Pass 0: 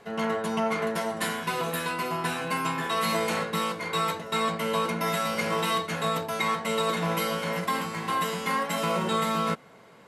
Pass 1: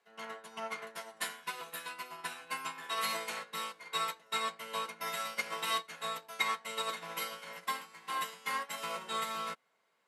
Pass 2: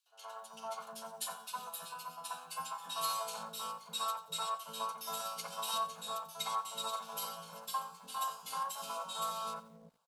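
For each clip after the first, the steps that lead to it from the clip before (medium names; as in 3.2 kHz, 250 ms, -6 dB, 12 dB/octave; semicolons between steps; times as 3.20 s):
high-pass 1.3 kHz 6 dB/octave; upward expansion 2.5:1, over -39 dBFS
static phaser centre 820 Hz, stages 4; three bands offset in time highs, mids, lows 60/350 ms, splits 440/2100 Hz; bit-crushed delay 89 ms, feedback 35%, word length 10-bit, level -15 dB; trim +2 dB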